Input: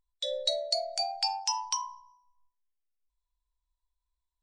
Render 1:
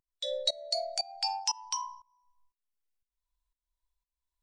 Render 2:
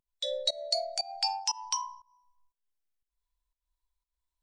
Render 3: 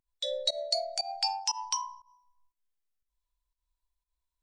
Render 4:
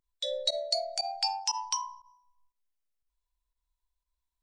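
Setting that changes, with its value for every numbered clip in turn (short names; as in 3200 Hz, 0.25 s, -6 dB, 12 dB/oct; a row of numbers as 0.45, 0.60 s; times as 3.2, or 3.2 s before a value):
pump, release: 438, 248, 131, 61 ms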